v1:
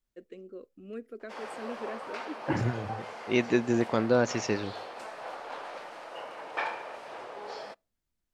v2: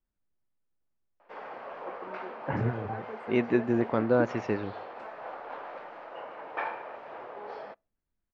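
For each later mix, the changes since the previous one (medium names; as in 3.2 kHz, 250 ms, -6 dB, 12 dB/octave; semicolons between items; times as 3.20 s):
first voice: entry +1.70 s; master: add low-pass 2 kHz 12 dB/octave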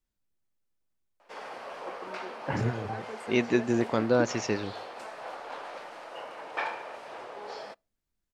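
master: remove low-pass 2 kHz 12 dB/octave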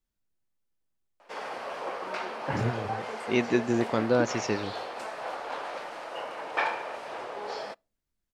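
background +4.5 dB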